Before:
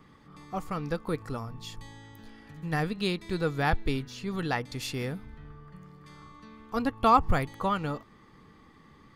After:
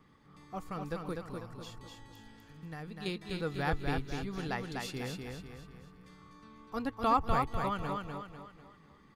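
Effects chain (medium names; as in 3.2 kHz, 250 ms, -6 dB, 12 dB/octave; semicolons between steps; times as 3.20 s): 1.13–3.06 s: compression 3:1, threshold -37 dBFS, peak gain reduction 9.5 dB; feedback delay 248 ms, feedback 43%, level -4 dB; trim -7 dB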